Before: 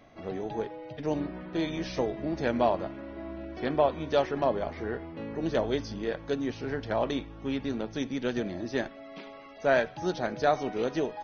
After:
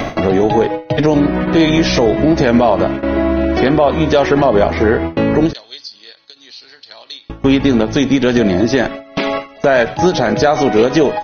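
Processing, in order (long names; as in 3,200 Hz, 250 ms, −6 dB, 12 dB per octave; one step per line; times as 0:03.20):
upward compression, threshold −30 dBFS
noise gate with hold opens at −29 dBFS
0:05.53–0:07.30: resonant band-pass 4,300 Hz, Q 8.5
boost into a limiter +23 dB
every ending faded ahead of time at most 230 dB per second
level −1 dB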